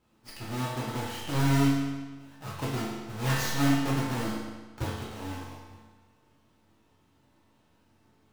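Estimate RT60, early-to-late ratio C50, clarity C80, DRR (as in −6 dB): 1.3 s, 0.5 dB, 2.5 dB, −7.5 dB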